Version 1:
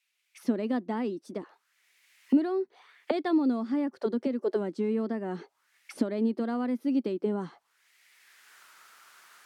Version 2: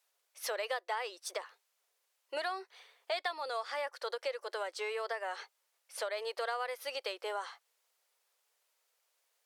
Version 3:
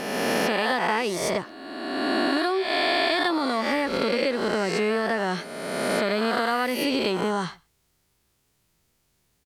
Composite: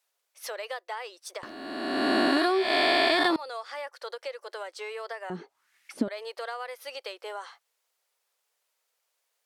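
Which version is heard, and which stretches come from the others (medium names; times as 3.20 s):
2
1.43–3.36 s: from 3
5.30–6.08 s: from 1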